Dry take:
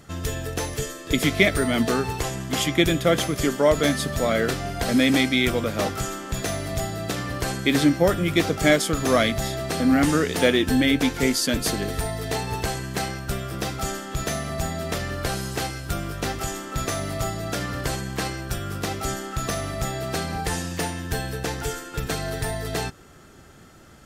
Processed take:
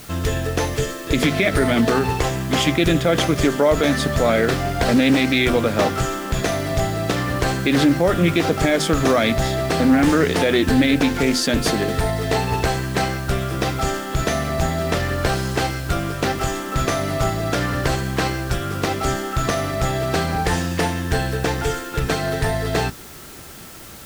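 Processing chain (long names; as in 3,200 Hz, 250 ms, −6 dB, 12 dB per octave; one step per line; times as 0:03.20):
low-pass filter 3,800 Hz 6 dB per octave
mains-hum notches 50/100/150/200/250 Hz
brickwall limiter −15 dBFS, peak gain reduction 11 dB
bit-depth reduction 8 bits, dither triangular
highs frequency-modulated by the lows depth 0.16 ms
level +7.5 dB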